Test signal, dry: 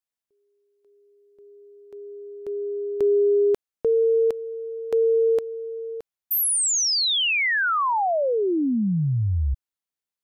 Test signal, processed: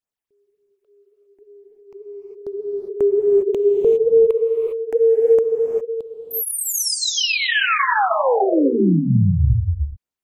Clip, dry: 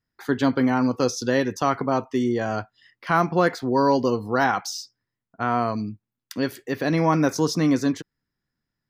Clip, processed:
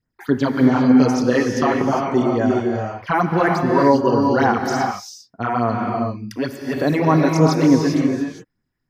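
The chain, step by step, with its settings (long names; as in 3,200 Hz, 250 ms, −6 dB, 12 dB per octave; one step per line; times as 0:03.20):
high-shelf EQ 5,400 Hz −6.5 dB
all-pass phaser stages 8, 3.4 Hz, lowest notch 150–4,500 Hz
reverb whose tail is shaped and stops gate 430 ms rising, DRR 1.5 dB
level +5 dB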